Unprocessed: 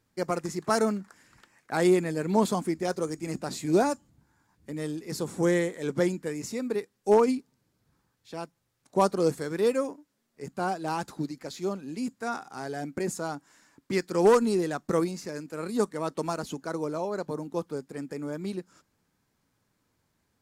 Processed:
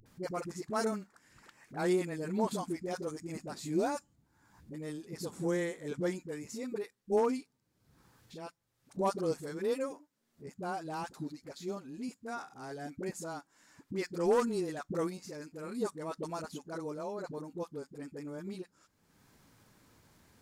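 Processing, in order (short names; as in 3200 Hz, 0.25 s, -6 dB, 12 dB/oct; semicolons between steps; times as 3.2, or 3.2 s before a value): dispersion highs, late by 59 ms, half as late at 430 Hz; upward compressor, threshold -39 dBFS; gain -8 dB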